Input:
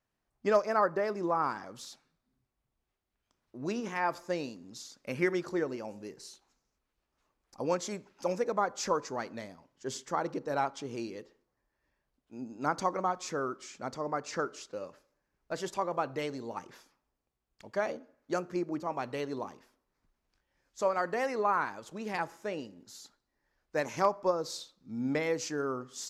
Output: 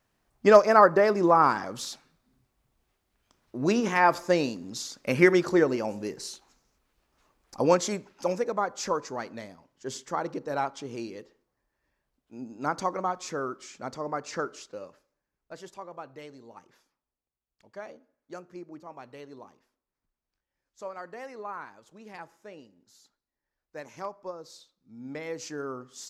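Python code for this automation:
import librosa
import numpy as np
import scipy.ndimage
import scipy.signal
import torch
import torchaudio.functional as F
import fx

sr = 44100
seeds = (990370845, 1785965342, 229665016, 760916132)

y = fx.gain(x, sr, db=fx.line((7.61, 10.0), (8.54, 1.5), (14.55, 1.5), (15.81, -9.5), (24.99, -9.5), (25.48, -2.0)))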